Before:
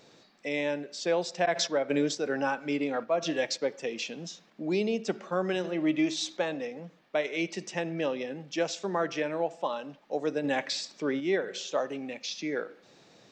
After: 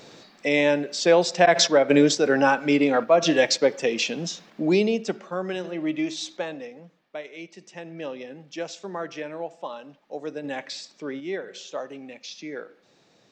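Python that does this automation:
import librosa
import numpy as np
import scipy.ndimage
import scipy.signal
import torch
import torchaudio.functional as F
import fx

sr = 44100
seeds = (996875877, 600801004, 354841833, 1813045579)

y = fx.gain(x, sr, db=fx.line((4.64, 10.0), (5.29, 0.0), (6.39, 0.0), (7.54, -10.0), (8.1, -3.0)))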